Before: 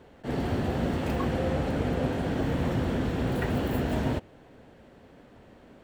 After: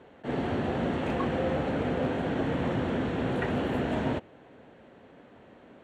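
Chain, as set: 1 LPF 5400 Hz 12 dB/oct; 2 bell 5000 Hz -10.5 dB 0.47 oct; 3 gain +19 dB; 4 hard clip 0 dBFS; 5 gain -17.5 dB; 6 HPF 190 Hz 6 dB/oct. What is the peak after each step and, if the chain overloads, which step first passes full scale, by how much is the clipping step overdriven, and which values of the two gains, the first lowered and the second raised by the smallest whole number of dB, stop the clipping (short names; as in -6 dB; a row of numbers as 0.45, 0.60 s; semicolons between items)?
-15.0, -15.0, +4.0, 0.0, -17.5, -16.5 dBFS; step 3, 4.0 dB; step 3 +15 dB, step 5 -13.5 dB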